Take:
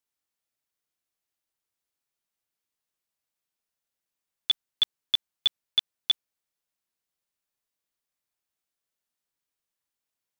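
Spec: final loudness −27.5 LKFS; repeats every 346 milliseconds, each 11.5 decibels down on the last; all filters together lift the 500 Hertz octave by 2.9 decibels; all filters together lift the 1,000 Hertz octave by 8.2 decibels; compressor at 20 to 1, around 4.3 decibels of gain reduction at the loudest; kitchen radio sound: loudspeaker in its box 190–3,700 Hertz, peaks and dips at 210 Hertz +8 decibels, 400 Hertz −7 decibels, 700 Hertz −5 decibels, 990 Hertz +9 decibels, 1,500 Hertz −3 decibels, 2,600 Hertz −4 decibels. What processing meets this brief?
parametric band 500 Hz +6 dB
parametric band 1,000 Hz +4 dB
downward compressor 20 to 1, threshold −22 dBFS
loudspeaker in its box 190–3,700 Hz, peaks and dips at 210 Hz +8 dB, 400 Hz −7 dB, 700 Hz −5 dB, 990 Hz +9 dB, 1,500 Hz −3 dB, 2,600 Hz −4 dB
repeating echo 346 ms, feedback 27%, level −11.5 dB
level +5.5 dB

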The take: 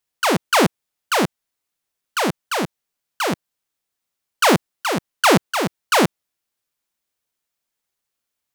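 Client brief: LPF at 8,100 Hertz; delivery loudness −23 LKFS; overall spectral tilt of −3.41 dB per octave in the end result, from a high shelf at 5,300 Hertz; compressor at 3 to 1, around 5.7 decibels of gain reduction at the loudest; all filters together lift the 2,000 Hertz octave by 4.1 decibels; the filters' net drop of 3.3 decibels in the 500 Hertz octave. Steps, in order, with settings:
low-pass filter 8,100 Hz
parametric band 500 Hz −4.5 dB
parametric band 2,000 Hz +6 dB
high-shelf EQ 5,300 Hz −3 dB
downward compressor 3 to 1, threshold −17 dBFS
level +0.5 dB

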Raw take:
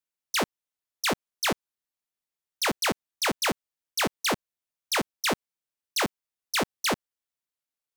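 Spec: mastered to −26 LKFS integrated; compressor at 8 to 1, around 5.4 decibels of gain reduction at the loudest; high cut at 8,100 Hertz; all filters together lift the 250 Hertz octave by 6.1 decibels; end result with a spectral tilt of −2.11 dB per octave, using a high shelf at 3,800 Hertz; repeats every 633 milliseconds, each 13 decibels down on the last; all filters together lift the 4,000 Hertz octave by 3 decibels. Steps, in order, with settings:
low-pass filter 8,100 Hz
parametric band 250 Hz +7.5 dB
high-shelf EQ 3,800 Hz −4 dB
parametric band 4,000 Hz +6.5 dB
downward compressor 8 to 1, threshold −24 dBFS
repeating echo 633 ms, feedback 22%, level −13 dB
level +4 dB

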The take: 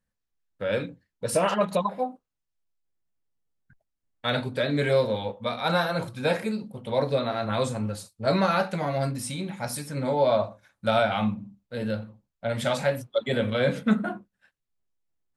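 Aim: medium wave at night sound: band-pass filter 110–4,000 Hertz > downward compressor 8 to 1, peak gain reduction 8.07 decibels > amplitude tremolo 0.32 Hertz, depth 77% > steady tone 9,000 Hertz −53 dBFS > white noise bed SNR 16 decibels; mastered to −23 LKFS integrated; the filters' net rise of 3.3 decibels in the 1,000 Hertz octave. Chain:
band-pass filter 110–4,000 Hz
parametric band 1,000 Hz +4.5 dB
downward compressor 8 to 1, threshold −23 dBFS
amplitude tremolo 0.32 Hz, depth 77%
steady tone 9,000 Hz −53 dBFS
white noise bed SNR 16 dB
level +11.5 dB

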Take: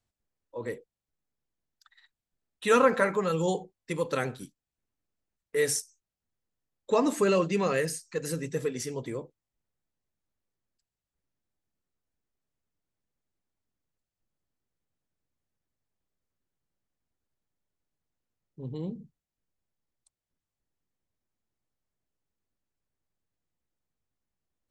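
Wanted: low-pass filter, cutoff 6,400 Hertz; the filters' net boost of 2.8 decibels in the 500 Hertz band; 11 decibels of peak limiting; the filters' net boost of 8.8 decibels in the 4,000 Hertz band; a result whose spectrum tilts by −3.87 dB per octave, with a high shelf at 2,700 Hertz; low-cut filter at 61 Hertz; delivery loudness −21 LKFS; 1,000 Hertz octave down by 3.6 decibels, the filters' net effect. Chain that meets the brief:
high-pass filter 61 Hz
low-pass filter 6,400 Hz
parametric band 500 Hz +4.5 dB
parametric band 1,000 Hz −8 dB
high-shelf EQ 2,700 Hz +7.5 dB
parametric band 4,000 Hz +6 dB
level +9 dB
brickwall limiter −9.5 dBFS

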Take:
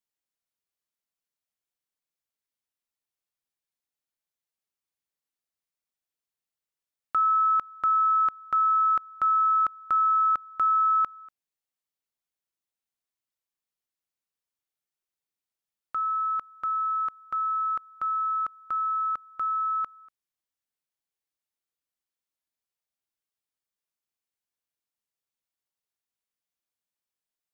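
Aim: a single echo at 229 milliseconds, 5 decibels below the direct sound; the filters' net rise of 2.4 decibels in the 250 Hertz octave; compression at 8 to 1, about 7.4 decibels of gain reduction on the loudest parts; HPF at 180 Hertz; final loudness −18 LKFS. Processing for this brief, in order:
high-pass filter 180 Hz
parametric band 250 Hz +4.5 dB
downward compressor 8 to 1, threshold −28 dBFS
single-tap delay 229 ms −5 dB
level +12.5 dB

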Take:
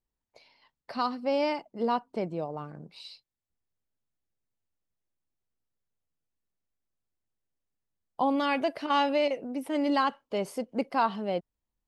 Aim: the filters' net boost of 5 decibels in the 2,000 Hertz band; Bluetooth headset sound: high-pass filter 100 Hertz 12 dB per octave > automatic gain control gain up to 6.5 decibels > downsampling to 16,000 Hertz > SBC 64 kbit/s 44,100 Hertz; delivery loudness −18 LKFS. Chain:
high-pass filter 100 Hz 12 dB per octave
parametric band 2,000 Hz +6.5 dB
automatic gain control gain up to 6.5 dB
downsampling to 16,000 Hz
level +10.5 dB
SBC 64 kbit/s 44,100 Hz

